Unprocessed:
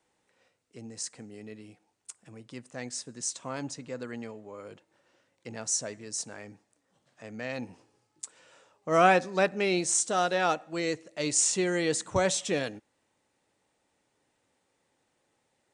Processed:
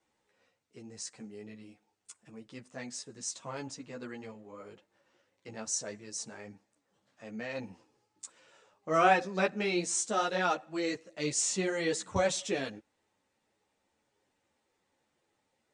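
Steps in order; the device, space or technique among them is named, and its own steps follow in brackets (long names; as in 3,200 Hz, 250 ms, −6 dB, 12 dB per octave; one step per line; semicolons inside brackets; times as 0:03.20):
string-machine ensemble chorus (string-ensemble chorus; low-pass filter 8,000 Hz 12 dB per octave)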